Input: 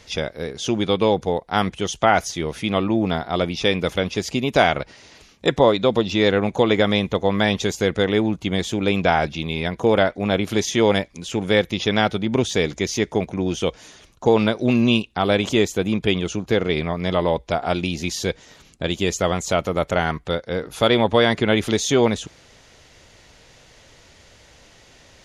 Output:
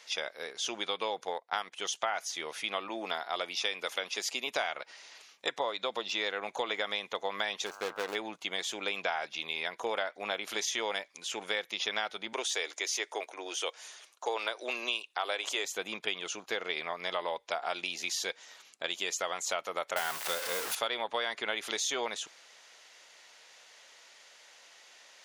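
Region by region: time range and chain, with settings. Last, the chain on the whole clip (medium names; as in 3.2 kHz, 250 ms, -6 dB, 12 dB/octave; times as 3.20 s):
1.27–1.72 s: transient shaper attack +3 dB, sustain -9 dB + tape noise reduction on one side only decoder only
2.89–4.47 s: high-pass 170 Hz + treble shelf 6.1 kHz +4.5 dB
7.65–8.14 s: median filter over 25 samples + mains buzz 100 Hz, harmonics 16, -42 dBFS -1 dB/octave
12.33–15.65 s: high-pass 320 Hz 24 dB/octave + peaking EQ 9 kHz +5 dB 0.63 oct
19.96–20.75 s: jump at every zero crossing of -22 dBFS + bass shelf 110 Hz +7.5 dB + modulation noise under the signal 13 dB
whole clip: high-pass 810 Hz 12 dB/octave; compression 5:1, threshold -25 dBFS; trim -4 dB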